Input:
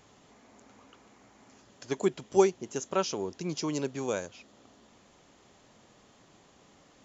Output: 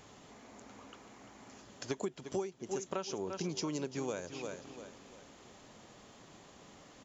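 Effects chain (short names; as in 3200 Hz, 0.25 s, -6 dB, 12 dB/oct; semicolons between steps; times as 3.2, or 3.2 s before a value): feedback echo 0.345 s, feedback 37%, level -14 dB; compressor 20:1, threshold -36 dBFS, peak gain reduction 21.5 dB; gain +3 dB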